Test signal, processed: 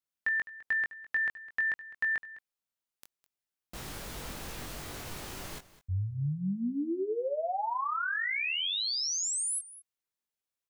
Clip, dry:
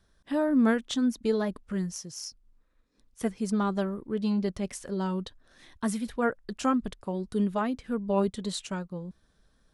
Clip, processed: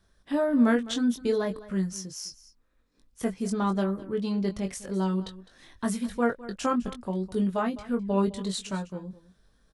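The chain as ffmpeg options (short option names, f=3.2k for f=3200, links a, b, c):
-filter_complex "[0:a]asplit=2[a][b];[b]adelay=21,volume=-5dB[c];[a][c]amix=inputs=2:normalize=0,aecho=1:1:207:0.133"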